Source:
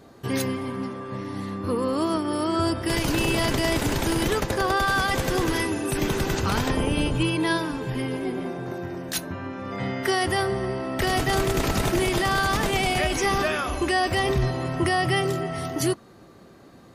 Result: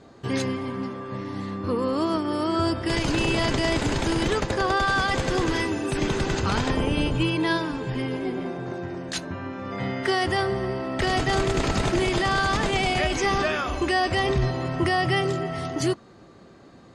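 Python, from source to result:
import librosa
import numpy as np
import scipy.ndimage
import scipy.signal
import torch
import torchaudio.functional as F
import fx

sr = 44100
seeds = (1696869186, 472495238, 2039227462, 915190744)

y = scipy.signal.sosfilt(scipy.signal.butter(4, 7800.0, 'lowpass', fs=sr, output='sos'), x)
y = fx.notch(y, sr, hz=5700.0, q=17.0)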